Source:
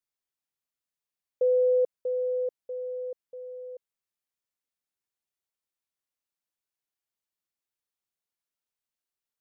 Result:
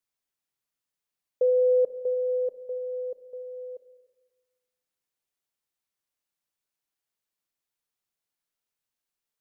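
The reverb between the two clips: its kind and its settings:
rectangular room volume 900 cubic metres, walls mixed, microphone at 0.4 metres
level +2.5 dB

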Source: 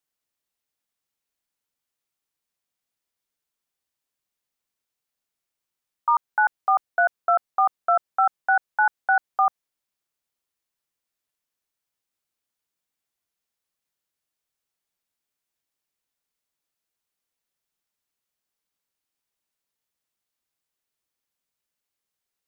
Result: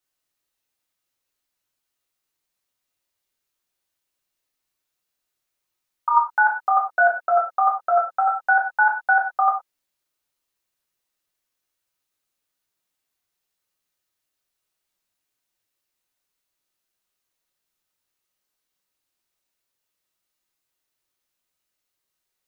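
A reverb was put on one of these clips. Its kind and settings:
reverb whose tail is shaped and stops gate 140 ms falling, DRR −2.5 dB

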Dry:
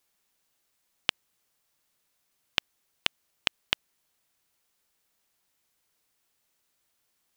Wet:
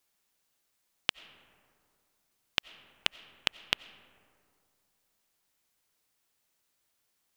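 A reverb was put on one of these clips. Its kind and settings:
comb and all-pass reverb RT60 2.4 s, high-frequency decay 0.35×, pre-delay 50 ms, DRR 17.5 dB
level −2 dB

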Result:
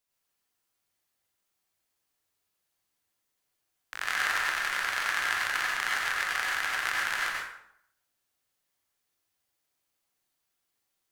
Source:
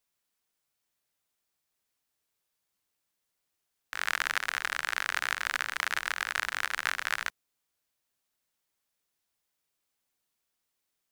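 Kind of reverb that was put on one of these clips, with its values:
dense smooth reverb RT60 0.72 s, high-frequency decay 0.7×, pre-delay 75 ms, DRR −4 dB
level −3 dB

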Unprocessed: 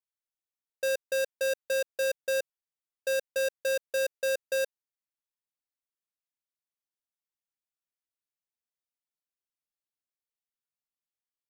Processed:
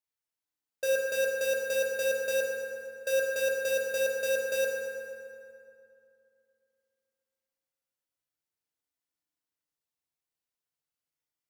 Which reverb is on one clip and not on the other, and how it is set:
feedback delay network reverb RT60 2.6 s, low-frequency decay 1.2×, high-frequency decay 0.6×, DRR −2.5 dB
level −1.5 dB

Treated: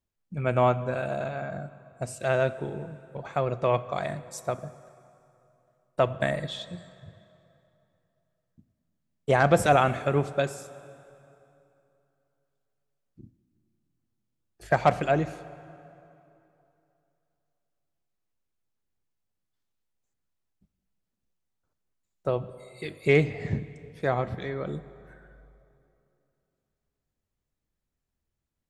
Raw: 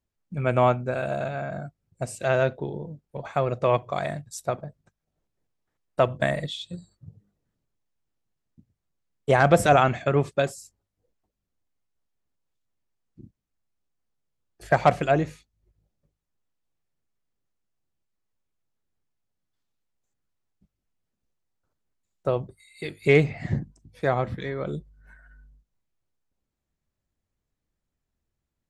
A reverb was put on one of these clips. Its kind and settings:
dense smooth reverb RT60 2.9 s, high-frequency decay 0.75×, DRR 14.5 dB
level −2.5 dB

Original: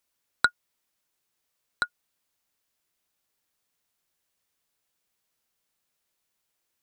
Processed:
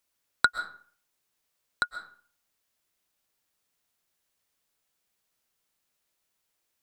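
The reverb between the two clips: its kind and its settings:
comb and all-pass reverb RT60 0.49 s, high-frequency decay 0.7×, pre-delay 90 ms, DRR 10 dB

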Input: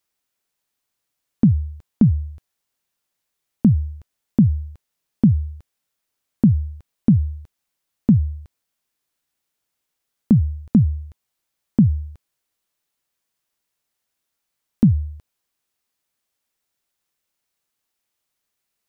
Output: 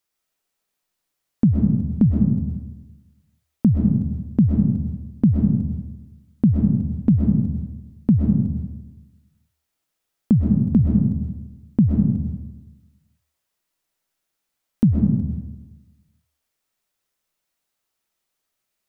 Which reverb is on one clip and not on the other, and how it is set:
comb and all-pass reverb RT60 1.1 s, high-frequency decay 0.35×, pre-delay 85 ms, DRR 0 dB
level −2 dB

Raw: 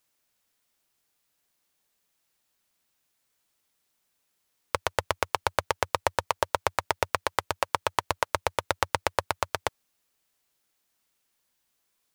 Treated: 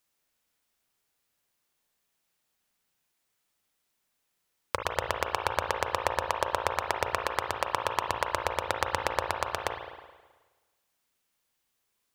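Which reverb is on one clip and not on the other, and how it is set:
spring reverb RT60 1.3 s, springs 35/53 ms, chirp 60 ms, DRR 3 dB
level −3 dB

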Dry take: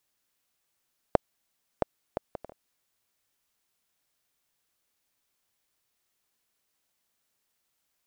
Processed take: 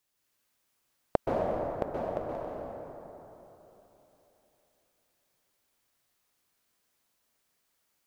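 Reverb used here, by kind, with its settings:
dense smooth reverb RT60 3.5 s, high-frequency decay 0.5×, pre-delay 115 ms, DRR −4.5 dB
level −2.5 dB

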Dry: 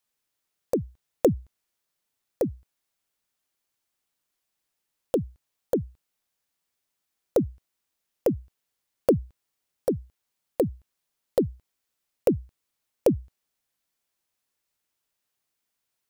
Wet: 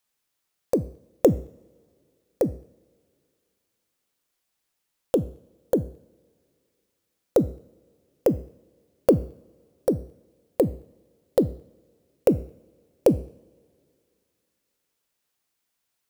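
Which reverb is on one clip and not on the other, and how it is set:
coupled-rooms reverb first 0.58 s, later 2.6 s, from −22 dB, DRR 14.5 dB
level +2.5 dB

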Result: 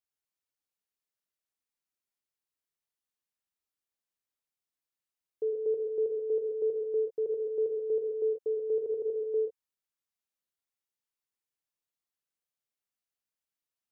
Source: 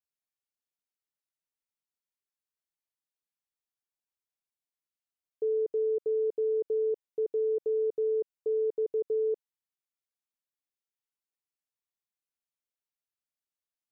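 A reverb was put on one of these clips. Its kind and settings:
reverb whose tail is shaped and stops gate 170 ms rising, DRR 3.5 dB
level −1.5 dB

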